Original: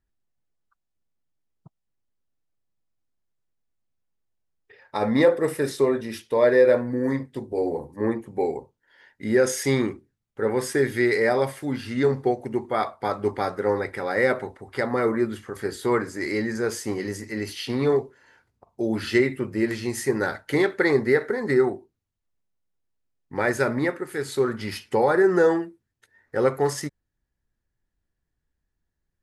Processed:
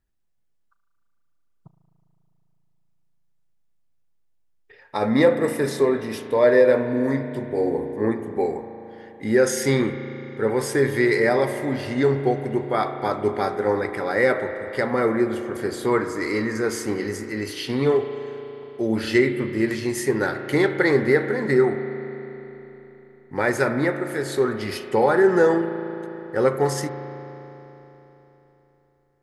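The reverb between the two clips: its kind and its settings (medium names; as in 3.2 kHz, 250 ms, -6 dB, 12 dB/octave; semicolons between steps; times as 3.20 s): spring tank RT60 3.7 s, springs 36 ms, chirp 70 ms, DRR 7.5 dB; trim +1.5 dB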